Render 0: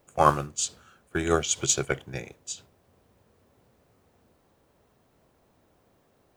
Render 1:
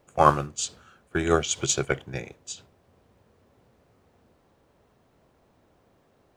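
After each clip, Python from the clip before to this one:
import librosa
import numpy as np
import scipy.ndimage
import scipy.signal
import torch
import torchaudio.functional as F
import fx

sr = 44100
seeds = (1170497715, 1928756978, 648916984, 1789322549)

y = fx.high_shelf(x, sr, hz=8000.0, db=-9.5)
y = F.gain(torch.from_numpy(y), 2.0).numpy()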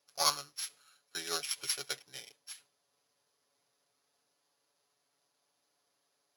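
y = np.r_[np.sort(x[:len(x) // 8 * 8].reshape(-1, 8), axis=1).ravel(), x[len(x) // 8 * 8:]]
y = fx.bandpass_q(y, sr, hz=5600.0, q=0.54)
y = y + 0.77 * np.pad(y, (int(7.0 * sr / 1000.0), 0))[:len(y)]
y = F.gain(torch.from_numpy(y), -6.0).numpy()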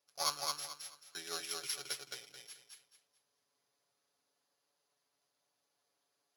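y = fx.echo_feedback(x, sr, ms=218, feedback_pct=28, wet_db=-3.0)
y = F.gain(torch.from_numpy(y), -6.0).numpy()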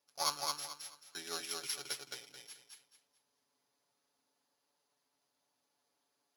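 y = fx.small_body(x, sr, hz=(250.0, 890.0), ring_ms=35, db=7)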